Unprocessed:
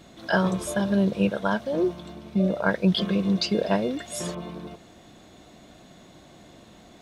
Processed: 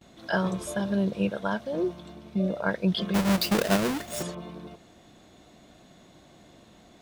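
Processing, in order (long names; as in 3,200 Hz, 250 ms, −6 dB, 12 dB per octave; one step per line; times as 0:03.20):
0:03.14–0:04.23: each half-wave held at its own peak
noise gate with hold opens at −43 dBFS
level −4 dB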